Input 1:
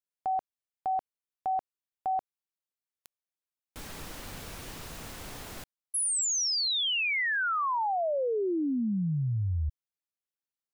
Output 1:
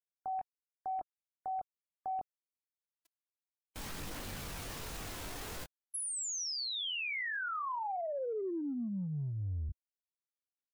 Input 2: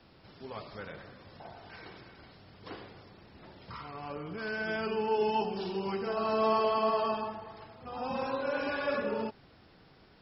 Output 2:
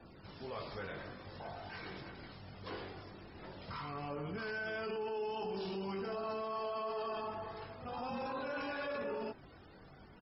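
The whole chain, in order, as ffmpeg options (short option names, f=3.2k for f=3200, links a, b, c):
-filter_complex "[0:a]aphaser=in_gain=1:out_gain=1:delay=3.2:decay=0.21:speed=0.48:type=triangular,asplit=2[a][b];[b]adelay=21,volume=-6dB[c];[a][c]amix=inputs=2:normalize=0,areverse,acompressor=threshold=-37dB:ratio=6:attack=0.14:release=40:knee=6:detection=peak,areverse,afftfilt=real='re*gte(hypot(re,im),0.00112)':imag='im*gte(hypot(re,im),0.00112)':win_size=1024:overlap=0.75,volume=1.5dB"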